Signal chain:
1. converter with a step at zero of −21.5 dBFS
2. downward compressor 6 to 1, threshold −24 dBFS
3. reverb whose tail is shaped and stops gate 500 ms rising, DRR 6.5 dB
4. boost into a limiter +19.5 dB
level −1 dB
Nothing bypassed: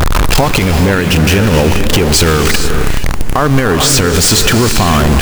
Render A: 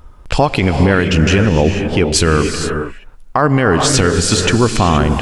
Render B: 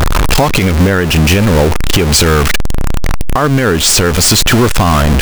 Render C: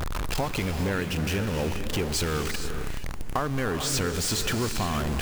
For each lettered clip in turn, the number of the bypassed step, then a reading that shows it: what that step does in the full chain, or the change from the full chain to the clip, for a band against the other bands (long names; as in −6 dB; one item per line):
1, distortion level −6 dB
3, change in momentary loudness spread +3 LU
4, change in crest factor +6.0 dB